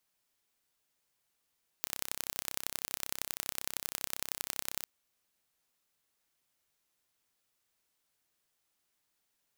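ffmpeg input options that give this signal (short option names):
-f lavfi -i "aevalsrc='0.531*eq(mod(n,1349),0)*(0.5+0.5*eq(mod(n,4047),0))':d=3.02:s=44100"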